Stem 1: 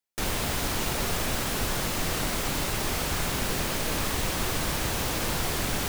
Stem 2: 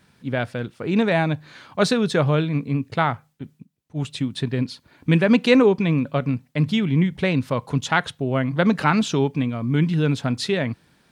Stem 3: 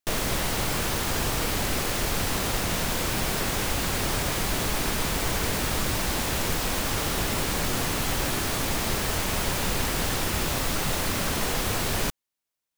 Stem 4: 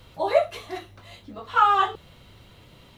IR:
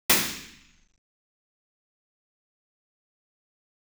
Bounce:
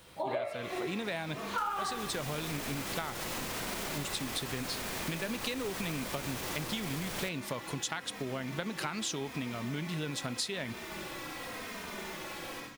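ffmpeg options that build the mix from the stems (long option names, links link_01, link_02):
-filter_complex "[0:a]alimiter=level_in=2.5dB:limit=-24dB:level=0:latency=1:release=119,volume=-2.5dB,adelay=1400,volume=0dB[link_01];[1:a]acompressor=threshold=-20dB:ratio=6,crystalizer=i=4:c=0,volume=-7.5dB,asplit=2[link_02][link_03];[2:a]bass=frequency=250:gain=-7,treble=frequency=4000:gain=-6,asplit=2[link_04][link_05];[link_05]adelay=3,afreqshift=-0.86[link_06];[link_04][link_06]amix=inputs=2:normalize=1,adelay=500,volume=-12.5dB,asplit=2[link_07][link_08];[link_08]volume=-17.5dB[link_09];[3:a]bass=frequency=250:gain=-3,treble=frequency=4000:gain=-8,volume=-4dB,asplit=2[link_10][link_11];[link_11]volume=-19dB[link_12];[link_03]apad=whole_len=585573[link_13];[link_07][link_13]sidechaincompress=threshold=-45dB:ratio=8:attack=16:release=206[link_14];[4:a]atrim=start_sample=2205[link_15];[link_09][link_12]amix=inputs=2:normalize=0[link_16];[link_16][link_15]afir=irnorm=-1:irlink=0[link_17];[link_01][link_02][link_14][link_10][link_17]amix=inputs=5:normalize=0,lowshelf=frequency=140:gain=-8.5,acompressor=threshold=-32dB:ratio=6"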